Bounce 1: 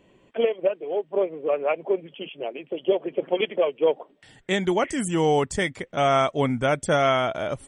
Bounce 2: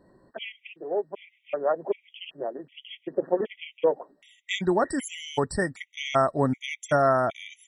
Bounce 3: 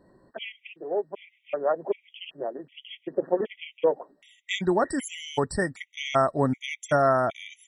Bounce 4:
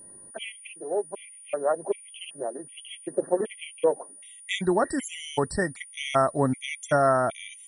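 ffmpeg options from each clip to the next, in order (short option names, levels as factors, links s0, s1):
-af "bandreject=f=450:w=12,afftfilt=real='re*gt(sin(2*PI*1.3*pts/sr)*(1-2*mod(floor(b*sr/1024/1900),2)),0)':imag='im*gt(sin(2*PI*1.3*pts/sr)*(1-2*mod(floor(b*sr/1024/1900),2)),0)':win_size=1024:overlap=0.75"
-af anull
-af "aeval=exprs='val(0)+0.00562*sin(2*PI*9500*n/s)':c=same"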